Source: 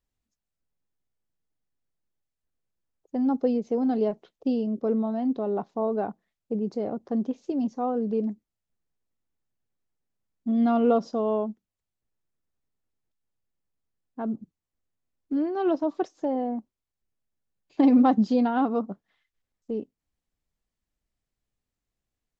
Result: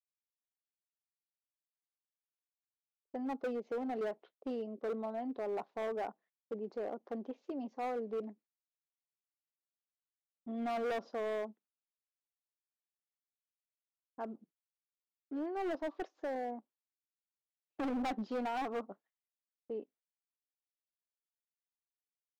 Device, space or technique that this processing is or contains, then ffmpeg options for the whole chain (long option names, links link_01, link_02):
walkie-talkie: -af "highpass=430,lowpass=2900,asoftclip=type=hard:threshold=-27.5dB,agate=range=-29dB:threshold=-59dB:ratio=16:detection=peak,volume=-5.5dB"